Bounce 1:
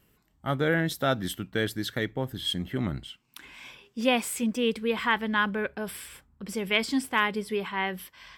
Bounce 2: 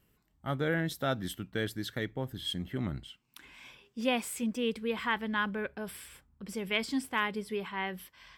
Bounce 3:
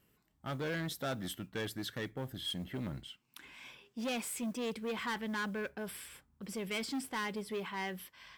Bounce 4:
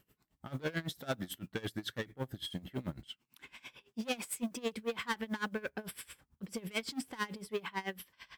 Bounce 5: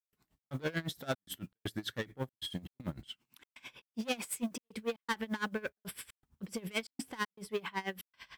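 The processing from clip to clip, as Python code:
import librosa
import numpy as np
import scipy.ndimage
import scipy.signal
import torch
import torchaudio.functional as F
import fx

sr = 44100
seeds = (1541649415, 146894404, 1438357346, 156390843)

y1 = fx.low_shelf(x, sr, hz=170.0, db=3.0)
y1 = F.gain(torch.from_numpy(y1), -6.0).numpy()
y2 = 10.0 ** (-32.0 / 20.0) * np.tanh(y1 / 10.0 ** (-32.0 / 20.0))
y2 = fx.low_shelf(y2, sr, hz=62.0, db=-11.5)
y2 = fx.mod_noise(y2, sr, seeds[0], snr_db=31)
y3 = y2 * 10.0 ** (-22 * (0.5 - 0.5 * np.cos(2.0 * np.pi * 9.0 * np.arange(len(y2)) / sr)) / 20.0)
y3 = F.gain(torch.from_numpy(y3), 5.0).numpy()
y4 = fx.step_gate(y3, sr, bpm=118, pattern='.xx.xxxxx', floor_db=-60.0, edge_ms=4.5)
y4 = F.gain(torch.from_numpy(y4), 1.0).numpy()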